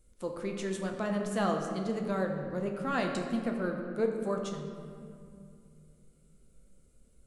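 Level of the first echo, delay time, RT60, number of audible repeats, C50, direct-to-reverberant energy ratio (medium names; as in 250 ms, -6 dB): no echo, no echo, 2.4 s, no echo, 4.5 dB, 2.0 dB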